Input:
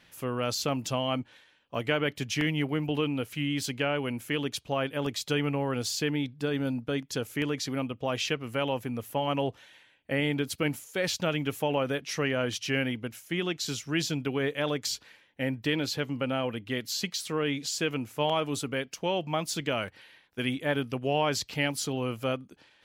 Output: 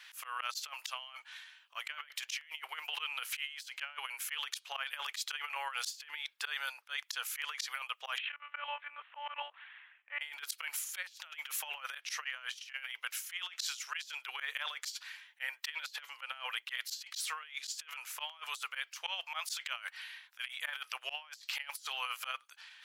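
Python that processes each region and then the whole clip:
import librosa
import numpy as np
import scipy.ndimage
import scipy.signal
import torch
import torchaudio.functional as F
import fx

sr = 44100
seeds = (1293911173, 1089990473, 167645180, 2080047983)

y = fx.chain(x, sr, fx.gaussian_blur(sigma=3.9),
    fx.tilt_eq(slope=2.0),
    fx.lpc_monotone(seeds[0], pitch_hz=290.0, order=10), at=(8.18, 10.21))
y = scipy.signal.sosfilt(scipy.signal.cheby2(4, 70, 250.0, 'highpass', fs=sr, output='sos'), y)
y = fx.auto_swell(y, sr, attack_ms=133.0)
y = fx.over_compress(y, sr, threshold_db=-43.0, ratio=-0.5)
y = y * 10.0 ** (3.0 / 20.0)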